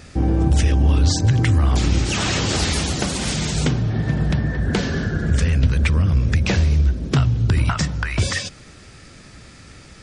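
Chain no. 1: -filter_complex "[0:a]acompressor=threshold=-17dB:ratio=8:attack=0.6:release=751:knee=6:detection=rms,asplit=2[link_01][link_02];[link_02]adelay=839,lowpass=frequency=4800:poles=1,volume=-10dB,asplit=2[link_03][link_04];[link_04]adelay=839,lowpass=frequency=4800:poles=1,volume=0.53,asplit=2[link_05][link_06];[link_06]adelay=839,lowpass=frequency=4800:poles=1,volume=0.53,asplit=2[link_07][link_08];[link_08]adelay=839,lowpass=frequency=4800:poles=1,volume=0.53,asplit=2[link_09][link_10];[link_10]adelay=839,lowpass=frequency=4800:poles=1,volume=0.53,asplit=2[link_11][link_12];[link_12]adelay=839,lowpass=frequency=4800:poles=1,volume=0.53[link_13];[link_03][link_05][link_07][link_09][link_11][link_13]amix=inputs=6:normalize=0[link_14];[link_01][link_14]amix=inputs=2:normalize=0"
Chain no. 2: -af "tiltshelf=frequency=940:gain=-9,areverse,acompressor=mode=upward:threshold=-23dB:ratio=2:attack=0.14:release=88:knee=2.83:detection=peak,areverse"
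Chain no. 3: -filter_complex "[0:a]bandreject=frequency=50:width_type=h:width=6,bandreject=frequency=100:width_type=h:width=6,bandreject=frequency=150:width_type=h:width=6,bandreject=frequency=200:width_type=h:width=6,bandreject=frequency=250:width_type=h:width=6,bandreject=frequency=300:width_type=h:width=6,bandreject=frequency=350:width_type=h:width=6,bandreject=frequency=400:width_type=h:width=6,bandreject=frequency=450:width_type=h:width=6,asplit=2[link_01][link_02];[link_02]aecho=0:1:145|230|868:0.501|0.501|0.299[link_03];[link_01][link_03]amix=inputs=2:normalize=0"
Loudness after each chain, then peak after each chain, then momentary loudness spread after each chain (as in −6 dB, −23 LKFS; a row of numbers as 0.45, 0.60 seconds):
−25.5, −19.5, −17.5 LKFS; −12.0, −2.5, −2.5 dBFS; 11, 19, 8 LU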